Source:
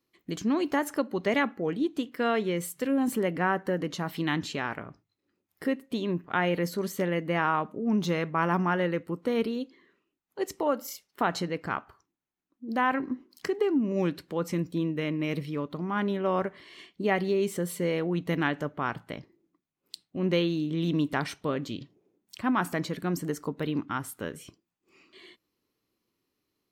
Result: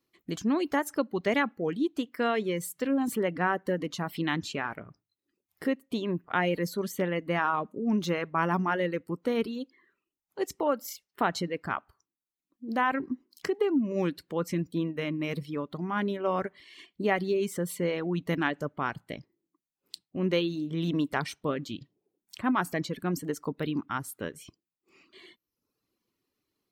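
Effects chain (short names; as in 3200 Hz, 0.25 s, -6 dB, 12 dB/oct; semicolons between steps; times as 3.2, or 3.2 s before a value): reverb removal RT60 0.7 s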